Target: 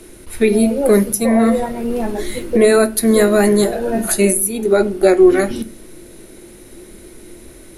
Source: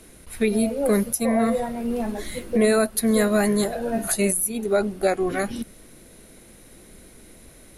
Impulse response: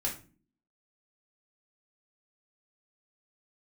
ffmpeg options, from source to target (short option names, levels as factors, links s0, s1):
-filter_complex "[0:a]equalizer=f=350:w=5.9:g=12,asplit=2[s0][s1];[1:a]atrim=start_sample=2205,asetrate=48510,aresample=44100[s2];[s1][s2]afir=irnorm=-1:irlink=0,volume=0.299[s3];[s0][s3]amix=inputs=2:normalize=0,volume=1.58"